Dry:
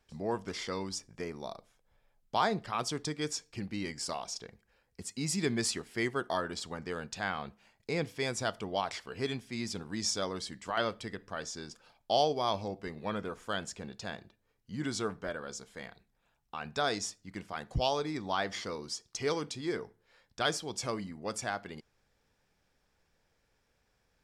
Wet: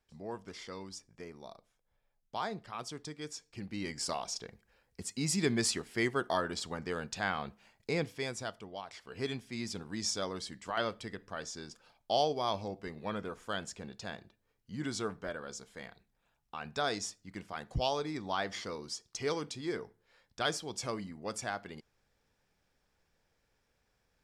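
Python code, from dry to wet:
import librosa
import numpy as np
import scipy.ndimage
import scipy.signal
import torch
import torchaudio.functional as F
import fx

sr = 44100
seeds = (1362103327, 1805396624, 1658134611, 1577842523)

y = fx.gain(x, sr, db=fx.line((3.33, -8.0), (4.01, 1.0), (7.9, 1.0), (8.87, -12.0), (9.19, -2.0)))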